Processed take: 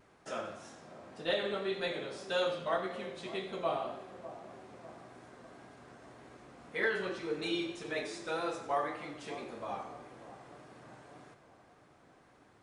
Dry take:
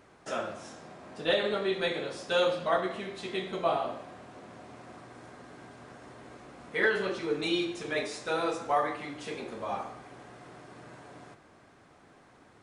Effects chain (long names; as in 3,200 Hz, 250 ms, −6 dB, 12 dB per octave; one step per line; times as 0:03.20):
echo with a time of its own for lows and highs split 1,100 Hz, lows 597 ms, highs 91 ms, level −14 dB
pitch vibrato 1.8 Hz 41 cents
level −5.5 dB